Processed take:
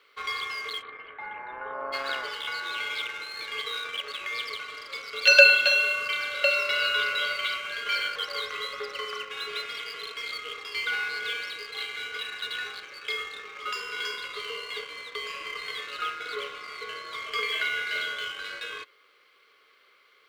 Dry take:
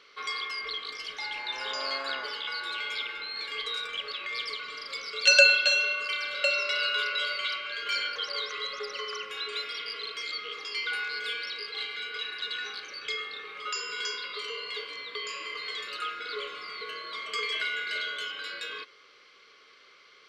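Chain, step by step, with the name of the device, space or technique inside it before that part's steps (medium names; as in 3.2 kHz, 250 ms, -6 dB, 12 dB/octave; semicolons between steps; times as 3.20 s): phone line with mismatched companding (band-pass 310–3600 Hz; companding laws mixed up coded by A); 0.81–1.92 s: low-pass 2.3 kHz -> 1.3 kHz 24 dB/octave; trim +5 dB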